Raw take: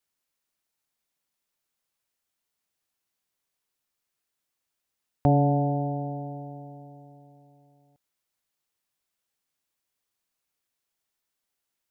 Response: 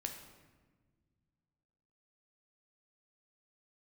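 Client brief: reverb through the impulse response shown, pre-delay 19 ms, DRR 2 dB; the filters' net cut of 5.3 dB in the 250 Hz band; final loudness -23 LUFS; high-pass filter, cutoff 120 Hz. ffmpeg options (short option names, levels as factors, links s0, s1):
-filter_complex "[0:a]highpass=120,equalizer=f=250:t=o:g=-6.5,asplit=2[s0][s1];[1:a]atrim=start_sample=2205,adelay=19[s2];[s1][s2]afir=irnorm=-1:irlink=0,volume=0.891[s3];[s0][s3]amix=inputs=2:normalize=0,volume=1.58"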